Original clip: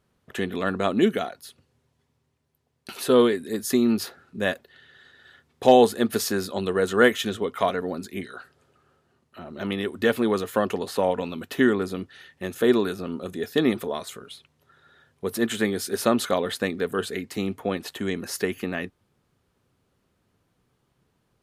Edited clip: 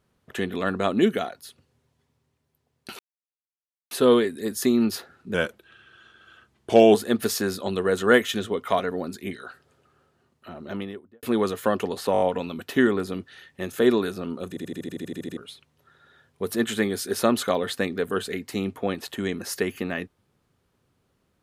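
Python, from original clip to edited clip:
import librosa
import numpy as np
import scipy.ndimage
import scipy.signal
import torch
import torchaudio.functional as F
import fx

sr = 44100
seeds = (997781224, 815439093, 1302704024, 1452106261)

y = fx.studio_fade_out(x, sr, start_s=9.43, length_s=0.7)
y = fx.edit(y, sr, fx.insert_silence(at_s=2.99, length_s=0.92),
    fx.speed_span(start_s=4.42, length_s=1.43, speed=0.89),
    fx.stutter(start_s=11.03, slice_s=0.02, count=5),
    fx.stutter_over(start_s=13.31, slice_s=0.08, count=11), tone=tone)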